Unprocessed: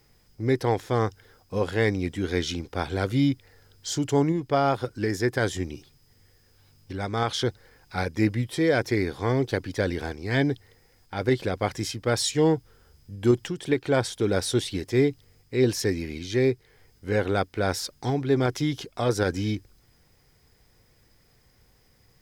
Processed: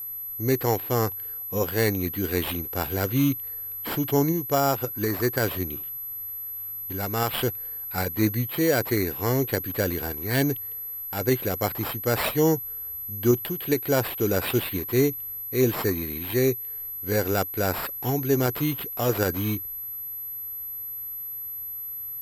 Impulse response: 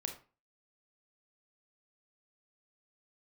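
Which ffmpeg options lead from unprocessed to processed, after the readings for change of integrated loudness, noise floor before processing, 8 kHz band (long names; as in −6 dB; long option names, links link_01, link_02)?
+0.5 dB, −62 dBFS, +1.0 dB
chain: -af "acrusher=samples=7:mix=1:aa=0.000001,aeval=exprs='val(0)+0.0251*sin(2*PI*12000*n/s)':channel_layout=same"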